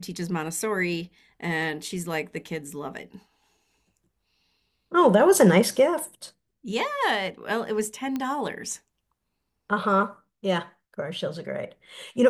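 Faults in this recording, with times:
8.16 pop -17 dBFS

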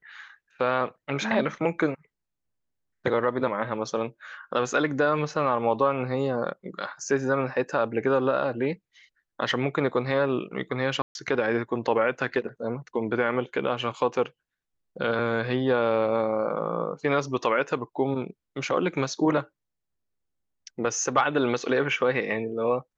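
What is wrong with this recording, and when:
11.02–11.15 gap 0.131 s

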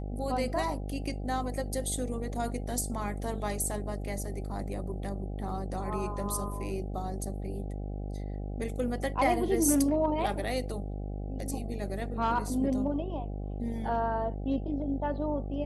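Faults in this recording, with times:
buzz 50 Hz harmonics 16 -36 dBFS

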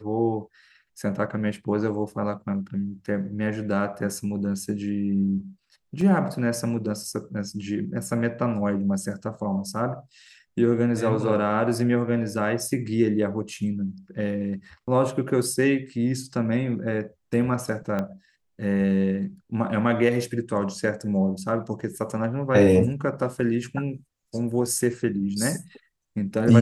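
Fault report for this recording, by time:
6.01 gap 2.4 ms
17.99 pop -16 dBFS

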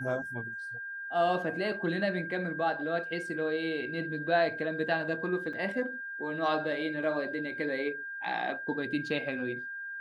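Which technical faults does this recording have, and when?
tone 1600 Hz -37 dBFS
5.53 gap 4.9 ms

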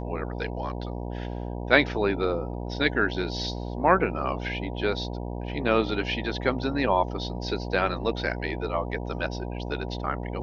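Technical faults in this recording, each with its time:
buzz 60 Hz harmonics 16 -33 dBFS

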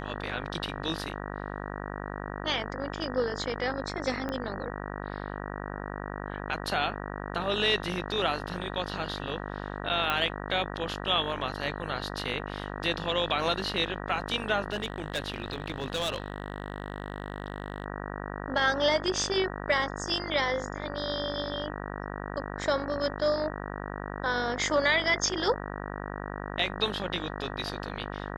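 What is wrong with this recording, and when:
buzz 50 Hz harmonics 38 -37 dBFS
4.29 pop -20 dBFS
10.1 pop -14 dBFS
14.72–17.84 clipped -26 dBFS

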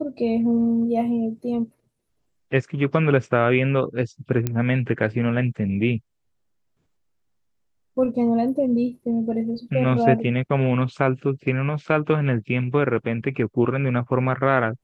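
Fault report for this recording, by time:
4.47 pop -10 dBFS

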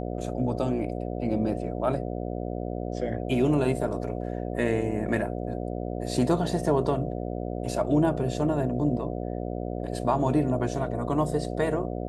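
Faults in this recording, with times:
buzz 60 Hz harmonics 12 -32 dBFS

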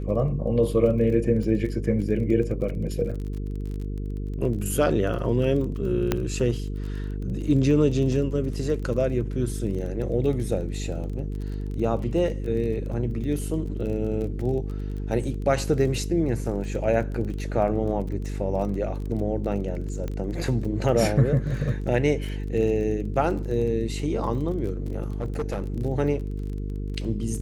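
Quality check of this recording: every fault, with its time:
buzz 50 Hz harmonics 9 -30 dBFS
crackle 27/s -33 dBFS
6.12 pop -8 dBFS
20.08 pop -19 dBFS
25.2–25.62 clipped -23 dBFS

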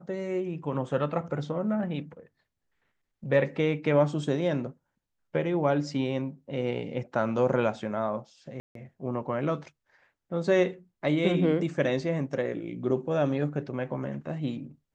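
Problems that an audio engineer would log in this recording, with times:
8.6–8.75 gap 0.153 s

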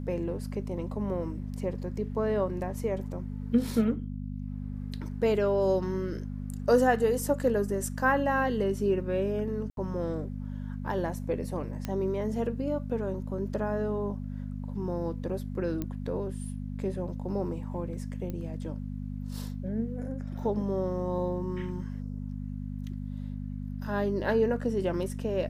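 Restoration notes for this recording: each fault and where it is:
hum 50 Hz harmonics 5 -36 dBFS
9.7–9.77 gap 72 ms
11.85 pop -19 dBFS
15.82 pop -20 dBFS
18.3 pop -24 dBFS

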